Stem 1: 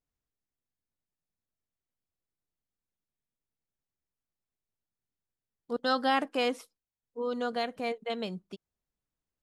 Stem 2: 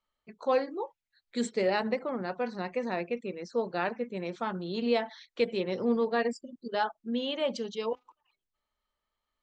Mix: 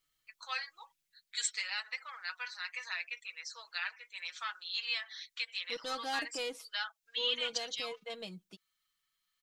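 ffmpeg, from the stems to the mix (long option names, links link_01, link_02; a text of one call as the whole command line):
ffmpeg -i stem1.wav -i stem2.wav -filter_complex "[0:a]asoftclip=type=tanh:threshold=-24dB,volume=-2.5dB,afade=type=out:start_time=0.87:duration=0.58:silence=0.334965[link_01];[1:a]highpass=frequency=1300:width=0.5412,highpass=frequency=1300:width=1.3066,alimiter=level_in=4dB:limit=-24dB:level=0:latency=1:release=322,volume=-4dB,volume=-3dB[link_02];[link_01][link_02]amix=inputs=2:normalize=0,highshelf=frequency=2100:gain=11,aecho=1:1:6.2:0.61" out.wav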